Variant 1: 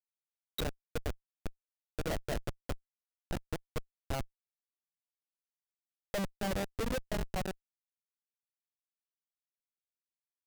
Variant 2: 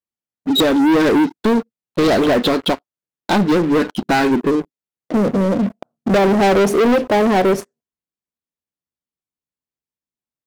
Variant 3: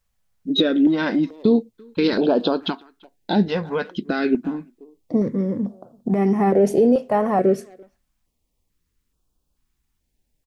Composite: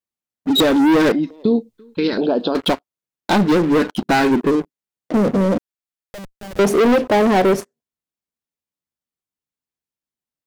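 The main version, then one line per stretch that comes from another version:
2
0:01.12–0:02.55: punch in from 3
0:05.58–0:06.59: punch in from 1

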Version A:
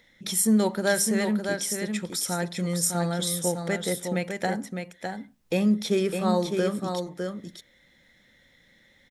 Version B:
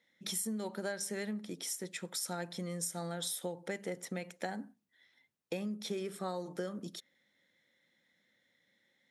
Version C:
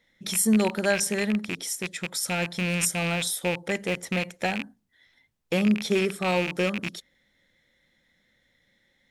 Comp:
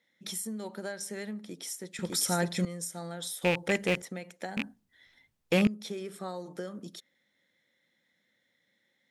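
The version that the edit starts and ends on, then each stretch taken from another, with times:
B
0:01.99–0:02.65: punch in from A
0:03.42–0:04.02: punch in from C
0:04.57–0:05.67: punch in from C

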